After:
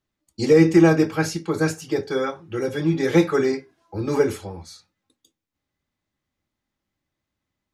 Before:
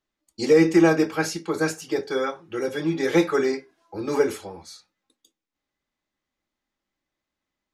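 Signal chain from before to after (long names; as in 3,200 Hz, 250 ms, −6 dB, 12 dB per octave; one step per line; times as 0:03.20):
parametric band 100 Hz +13 dB 1.7 octaves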